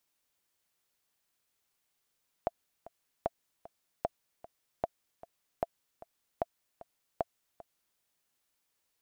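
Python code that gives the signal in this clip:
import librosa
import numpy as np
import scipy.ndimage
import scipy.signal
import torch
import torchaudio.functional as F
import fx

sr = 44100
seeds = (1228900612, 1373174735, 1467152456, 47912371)

y = fx.click_track(sr, bpm=152, beats=2, bars=7, hz=677.0, accent_db=18.5, level_db=-16.0)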